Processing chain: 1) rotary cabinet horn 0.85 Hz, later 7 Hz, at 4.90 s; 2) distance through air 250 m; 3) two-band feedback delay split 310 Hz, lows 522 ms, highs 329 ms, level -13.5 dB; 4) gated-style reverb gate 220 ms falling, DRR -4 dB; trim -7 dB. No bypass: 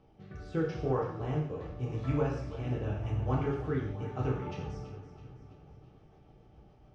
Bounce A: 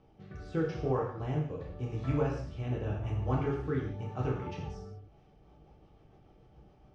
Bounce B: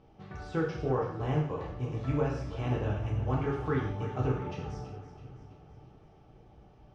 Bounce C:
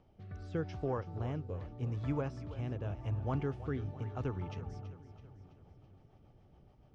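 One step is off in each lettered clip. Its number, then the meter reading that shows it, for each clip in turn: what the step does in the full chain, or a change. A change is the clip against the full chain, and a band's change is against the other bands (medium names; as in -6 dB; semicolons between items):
3, momentary loudness spread change -5 LU; 1, 2 kHz band +2.5 dB; 4, 125 Hz band +1.5 dB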